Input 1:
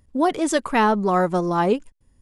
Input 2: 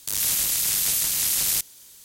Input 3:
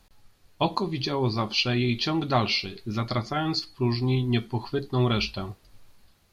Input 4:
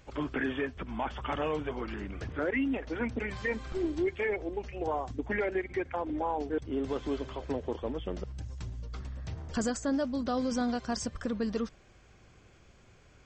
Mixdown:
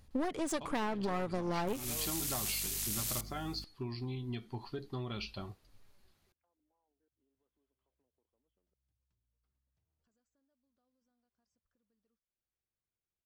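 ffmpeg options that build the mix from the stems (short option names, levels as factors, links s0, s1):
-filter_complex "[0:a]volume=0.668,asplit=2[s0][s1];[1:a]aeval=exprs='val(0)+0.0224*(sin(2*PI*50*n/s)+sin(2*PI*2*50*n/s)/2+sin(2*PI*3*50*n/s)/3+sin(2*PI*4*50*n/s)/4+sin(2*PI*5*50*n/s)/5)':c=same,adelay=1600,volume=0.211[s2];[2:a]acompressor=threshold=0.0501:ratio=6,volume=0.316[s3];[3:a]acompressor=threshold=0.00794:ratio=3,adelay=500,volume=0.596[s4];[s1]apad=whole_len=606760[s5];[s4][s5]sidechaingate=range=0.0141:threshold=0.00126:ratio=16:detection=peak[s6];[s0][s2][s3][s6]amix=inputs=4:normalize=0,aeval=exprs='clip(val(0),-1,0.0282)':c=same,acompressor=threshold=0.0316:ratio=12"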